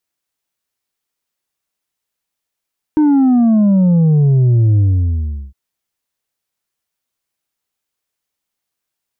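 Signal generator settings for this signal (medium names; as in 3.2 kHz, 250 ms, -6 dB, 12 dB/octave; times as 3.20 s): sub drop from 310 Hz, over 2.56 s, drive 4 dB, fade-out 0.75 s, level -8.5 dB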